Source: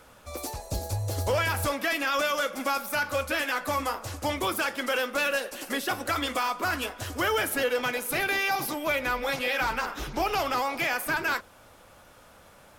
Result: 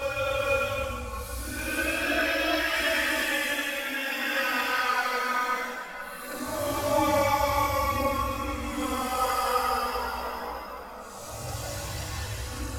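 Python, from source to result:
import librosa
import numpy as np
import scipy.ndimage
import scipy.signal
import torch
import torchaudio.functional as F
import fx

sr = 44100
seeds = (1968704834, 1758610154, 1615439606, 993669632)

y = fx.paulstretch(x, sr, seeds[0], factor=13.0, window_s=0.05, from_s=3.18)
y = fx.rev_gated(y, sr, seeds[1], gate_ms=490, shape='rising', drr_db=-2.0)
y = fx.chorus_voices(y, sr, voices=6, hz=0.29, base_ms=18, depth_ms=2.5, mix_pct=55)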